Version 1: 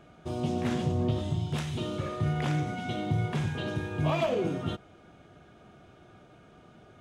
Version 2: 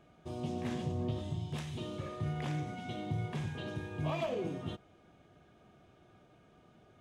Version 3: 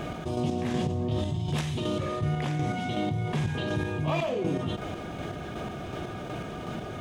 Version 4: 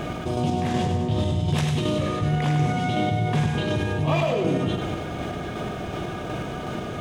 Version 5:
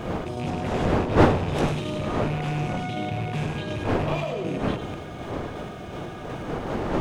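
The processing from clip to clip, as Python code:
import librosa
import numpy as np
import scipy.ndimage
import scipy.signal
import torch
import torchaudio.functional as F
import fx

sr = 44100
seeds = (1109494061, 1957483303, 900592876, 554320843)

y1 = fx.notch(x, sr, hz=1400.0, q=11.0)
y1 = y1 * 10.0 ** (-7.5 / 20.0)
y2 = fx.chopper(y1, sr, hz=2.7, depth_pct=60, duty_pct=35)
y2 = fx.env_flatten(y2, sr, amount_pct=70)
y2 = y2 * 10.0 ** (7.0 / 20.0)
y3 = fx.echo_feedback(y2, sr, ms=100, feedback_pct=57, wet_db=-6.5)
y3 = y3 * 10.0 ** (4.5 / 20.0)
y4 = fx.rattle_buzz(y3, sr, strikes_db=-23.0, level_db=-23.0)
y4 = fx.dmg_wind(y4, sr, seeds[0], corner_hz=600.0, level_db=-22.0)
y4 = y4 * 10.0 ** (-6.0 / 20.0)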